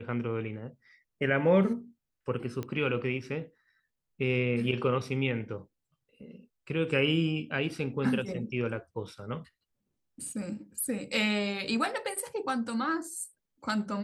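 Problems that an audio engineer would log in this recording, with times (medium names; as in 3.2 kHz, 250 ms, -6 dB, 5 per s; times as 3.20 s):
2.63 s: pop -23 dBFS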